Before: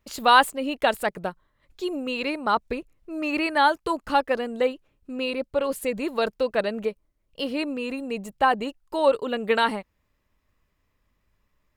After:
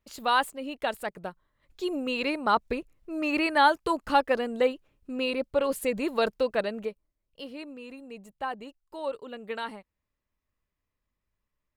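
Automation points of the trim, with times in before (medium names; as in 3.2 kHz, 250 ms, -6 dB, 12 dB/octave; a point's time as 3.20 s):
1.16 s -8 dB
1.95 s -1 dB
6.35 s -1 dB
7.57 s -13 dB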